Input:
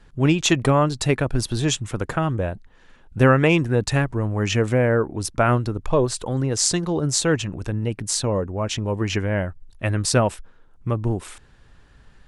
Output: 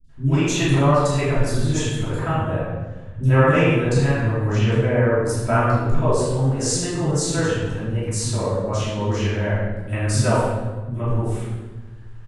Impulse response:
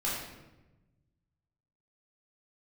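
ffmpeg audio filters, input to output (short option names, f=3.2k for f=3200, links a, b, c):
-filter_complex "[0:a]asettb=1/sr,asplit=3[a][b][c];[a]atrim=end=4.454[d];[b]atrim=start=4.45:end=4.92,asetpts=PTS-STARTPTS,afade=t=in:d=0.004:c=qsin,afade=t=out:st=0.466:d=0.004:c=qsin,highshelf=f=5.7k:g=-10.5[e];[c]atrim=start=4.916[f];[d][e]acrossfade=d=0.004:c1=hsin:c2=qsin[g];[g][f]acrossfade=d=0.004:c1=qsin:c2=hsin,acrossover=split=260|4100[h][i][j];[j]adelay=40[k];[i]adelay=90[l];[h][l][k]amix=inputs=3:normalize=0[m];[1:a]atrim=start_sample=2205,asetrate=34398,aresample=44100[n];[m][n]afir=irnorm=-1:irlink=0,volume=-7.5dB"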